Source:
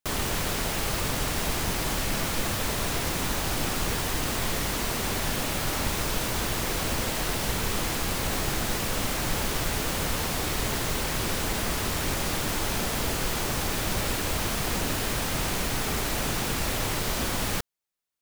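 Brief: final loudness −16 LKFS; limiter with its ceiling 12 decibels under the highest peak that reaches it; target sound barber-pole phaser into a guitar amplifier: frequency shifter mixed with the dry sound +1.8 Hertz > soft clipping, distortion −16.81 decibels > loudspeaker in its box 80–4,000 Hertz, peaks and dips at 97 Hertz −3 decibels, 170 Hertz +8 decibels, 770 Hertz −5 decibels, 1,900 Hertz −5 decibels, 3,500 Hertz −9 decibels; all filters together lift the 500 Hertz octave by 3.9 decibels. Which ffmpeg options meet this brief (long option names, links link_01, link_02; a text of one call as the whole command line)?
ffmpeg -i in.wav -filter_complex "[0:a]equalizer=frequency=500:width_type=o:gain=5.5,alimiter=level_in=1.5dB:limit=-24dB:level=0:latency=1,volume=-1.5dB,asplit=2[link_01][link_02];[link_02]afreqshift=1.8[link_03];[link_01][link_03]amix=inputs=2:normalize=1,asoftclip=threshold=-32.5dB,highpass=80,equalizer=frequency=97:width_type=q:width=4:gain=-3,equalizer=frequency=170:width_type=q:width=4:gain=8,equalizer=frequency=770:width_type=q:width=4:gain=-5,equalizer=frequency=1900:width_type=q:width=4:gain=-5,equalizer=frequency=3500:width_type=q:width=4:gain=-9,lowpass=frequency=4000:width=0.5412,lowpass=frequency=4000:width=1.3066,volume=26dB" out.wav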